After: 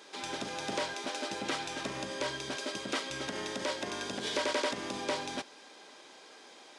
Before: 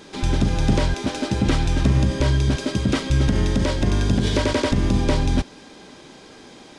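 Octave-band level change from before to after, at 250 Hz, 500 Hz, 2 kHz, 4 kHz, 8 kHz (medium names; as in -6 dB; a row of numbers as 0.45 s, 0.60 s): -19.0 dB, -10.0 dB, -6.5 dB, -6.5 dB, -6.5 dB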